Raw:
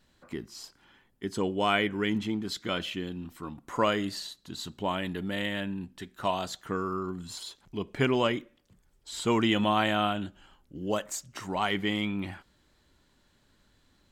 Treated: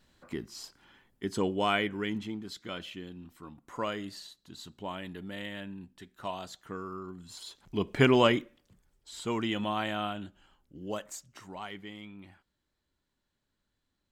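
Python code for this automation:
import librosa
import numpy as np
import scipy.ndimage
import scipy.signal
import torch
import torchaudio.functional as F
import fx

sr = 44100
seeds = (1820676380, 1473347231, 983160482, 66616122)

y = fx.gain(x, sr, db=fx.line((1.43, 0.0), (2.51, -8.0), (7.26, -8.0), (7.79, 3.5), (8.34, 3.5), (9.15, -6.5), (11.09, -6.5), (11.93, -16.0)))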